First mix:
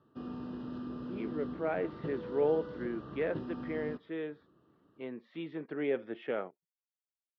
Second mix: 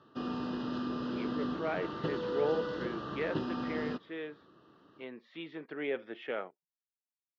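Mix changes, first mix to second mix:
background +9.5 dB
master: add spectral tilt +2.5 dB per octave

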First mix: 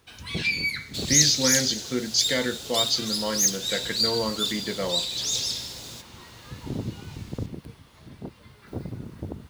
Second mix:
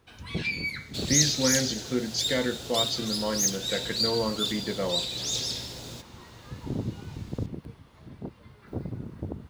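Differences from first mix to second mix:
second sound +4.5 dB
master: add high-shelf EQ 2,300 Hz −9.5 dB

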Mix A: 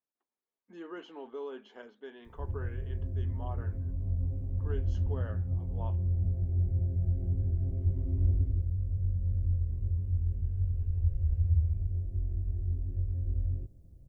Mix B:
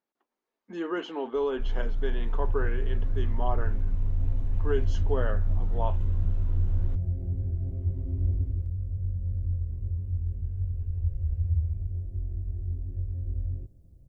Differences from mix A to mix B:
speech +12.0 dB
first sound: unmuted

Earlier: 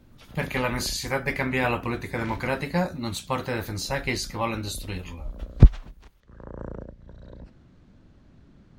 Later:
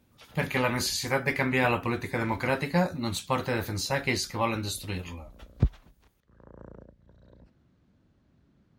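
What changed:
background −10.0 dB
master: add high-pass filter 54 Hz

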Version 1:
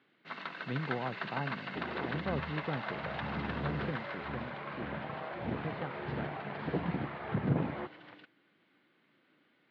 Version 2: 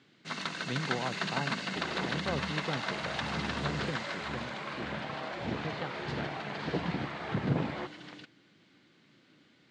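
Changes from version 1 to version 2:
first sound: remove high-pass filter 580 Hz 6 dB per octave
master: remove high-frequency loss of the air 420 metres

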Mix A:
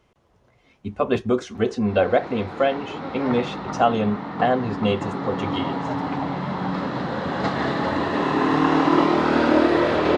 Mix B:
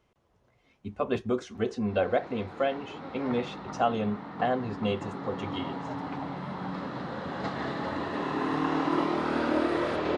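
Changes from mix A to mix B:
speech −7.5 dB
first sound −9.5 dB

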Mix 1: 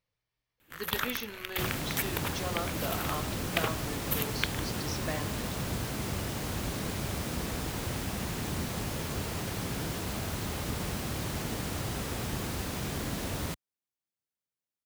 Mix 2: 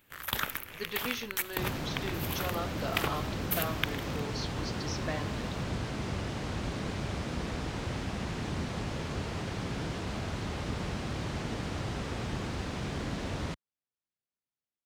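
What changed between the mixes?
first sound: entry −0.60 s
second sound: add high-frequency loss of the air 100 metres

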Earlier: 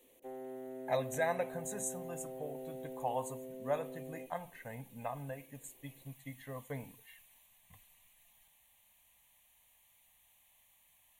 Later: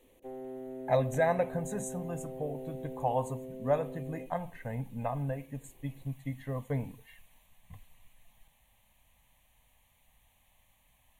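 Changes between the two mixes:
speech +4.5 dB
master: add spectral tilt −2.5 dB per octave

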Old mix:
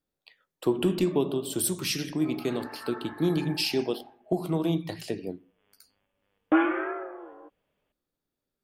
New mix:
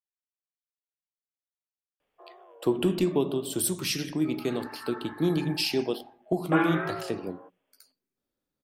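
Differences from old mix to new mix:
speech: entry +2.00 s
background: add Butterworth high-pass 350 Hz

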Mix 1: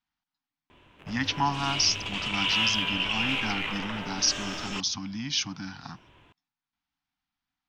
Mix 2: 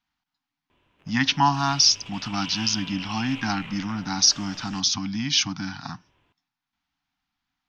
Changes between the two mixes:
speech +6.5 dB
background −9.5 dB

